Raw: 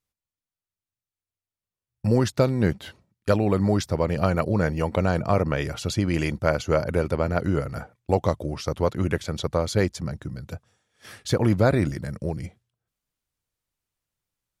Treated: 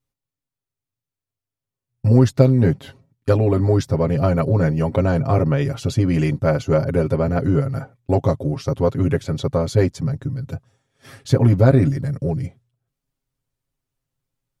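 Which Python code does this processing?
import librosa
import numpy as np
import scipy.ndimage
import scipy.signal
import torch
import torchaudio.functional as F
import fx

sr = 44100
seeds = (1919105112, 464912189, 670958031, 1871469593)

p1 = fx.tilt_shelf(x, sr, db=5.0, hz=650.0)
p2 = p1 + 0.86 * np.pad(p1, (int(7.4 * sr / 1000.0), 0))[:len(p1)]
p3 = 10.0 ** (-14.0 / 20.0) * np.tanh(p2 / 10.0 ** (-14.0 / 20.0))
p4 = p2 + F.gain(torch.from_numpy(p3), -11.0).numpy()
y = F.gain(torch.from_numpy(p4), -1.0).numpy()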